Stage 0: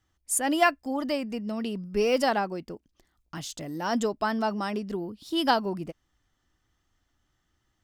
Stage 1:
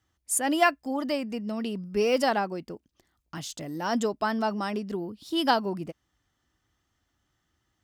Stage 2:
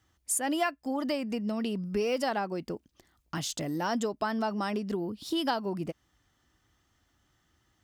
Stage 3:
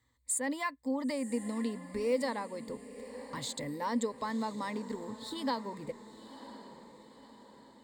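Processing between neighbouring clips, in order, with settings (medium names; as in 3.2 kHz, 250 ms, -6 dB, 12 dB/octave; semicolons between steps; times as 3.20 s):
high-pass 53 Hz
compression 3:1, threshold -34 dBFS, peak gain reduction 13.5 dB; trim +4.5 dB
rippled EQ curve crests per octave 1, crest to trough 15 dB; echo that smears into a reverb 1008 ms, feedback 50%, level -14 dB; trim -6.5 dB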